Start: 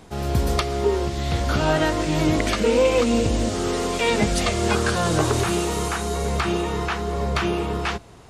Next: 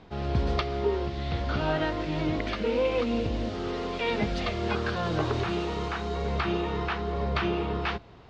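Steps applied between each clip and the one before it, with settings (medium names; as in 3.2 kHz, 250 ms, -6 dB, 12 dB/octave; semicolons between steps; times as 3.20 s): gain riding within 3 dB 2 s; low-pass 4.4 kHz 24 dB/octave; trim -7 dB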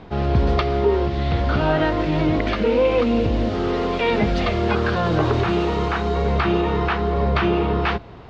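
treble shelf 3.6 kHz -8.5 dB; in parallel at -2 dB: peak limiter -24 dBFS, peak gain reduction 8.5 dB; on the sum: trim +5.5 dB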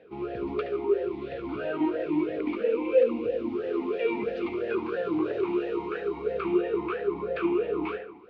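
on a send: tape echo 72 ms, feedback 63%, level -5 dB, low-pass 1.9 kHz; on the sum: talking filter e-u 3 Hz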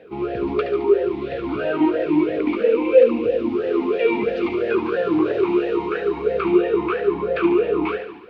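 feedback echo behind a high-pass 72 ms, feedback 66%, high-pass 3 kHz, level -7.5 dB; trim +8.5 dB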